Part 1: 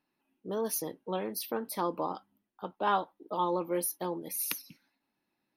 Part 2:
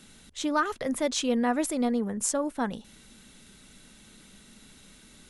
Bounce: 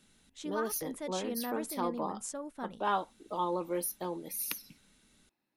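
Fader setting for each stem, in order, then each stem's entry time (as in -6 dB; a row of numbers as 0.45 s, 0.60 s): -2.5 dB, -12.5 dB; 0.00 s, 0.00 s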